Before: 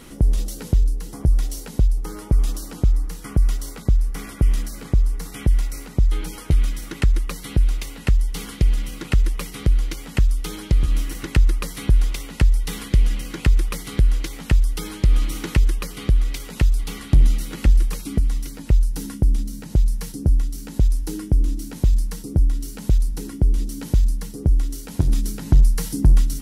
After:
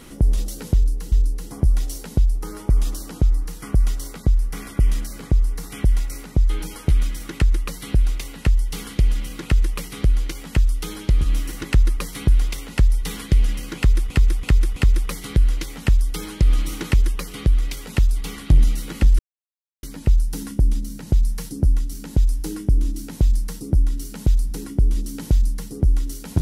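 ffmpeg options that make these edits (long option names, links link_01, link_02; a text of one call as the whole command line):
ffmpeg -i in.wav -filter_complex "[0:a]asplit=7[link_01][link_02][link_03][link_04][link_05][link_06][link_07];[link_01]atrim=end=1.122[link_08];[link_02]atrim=start=0.738:end=13.722[link_09];[link_03]atrim=start=13.388:end=13.722[link_10];[link_04]atrim=start=13.388:end=13.722[link_11];[link_05]atrim=start=13.388:end=17.82,asetpts=PTS-STARTPTS,afade=type=out:start_time=4.428:duration=0.004:curve=hsin[link_12];[link_06]atrim=start=17.82:end=18.46,asetpts=PTS-STARTPTS,volume=0[link_13];[link_07]atrim=start=18.46,asetpts=PTS-STARTPTS,afade=type=in:duration=0.004:curve=hsin[link_14];[link_08][link_09]acrossfade=duration=0.004:curve1=hsin:curve2=hsin[link_15];[link_15][link_10]acrossfade=duration=0.004:curve1=hsin:curve2=hsin[link_16];[link_16][link_11]acrossfade=duration=0.004:curve1=hsin:curve2=hsin[link_17];[link_12][link_13][link_14]concat=n=3:v=0:a=1[link_18];[link_17][link_18]acrossfade=duration=0.004:curve1=hsin:curve2=hsin" out.wav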